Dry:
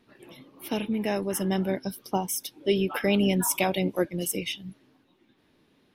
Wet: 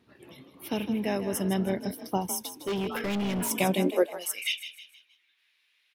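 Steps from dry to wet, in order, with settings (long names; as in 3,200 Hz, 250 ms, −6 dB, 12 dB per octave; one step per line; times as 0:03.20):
echo with shifted repeats 157 ms, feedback 42%, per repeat +36 Hz, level −11.5 dB
high-pass filter sweep 73 Hz → 2,300 Hz, 0:03.46–0:04.50
0:02.38–0:03.51: hard clipping −25 dBFS, distortion −10 dB
level −2 dB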